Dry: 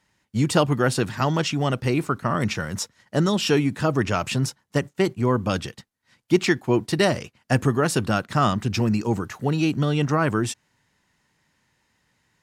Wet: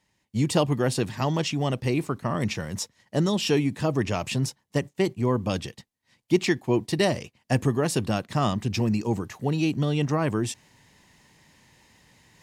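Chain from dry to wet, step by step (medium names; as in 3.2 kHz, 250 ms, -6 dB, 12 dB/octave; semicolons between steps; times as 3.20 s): peaking EQ 1.4 kHz -9.5 dB 0.42 oct; reverse; upward compressor, threshold -42 dBFS; reverse; trim -2.5 dB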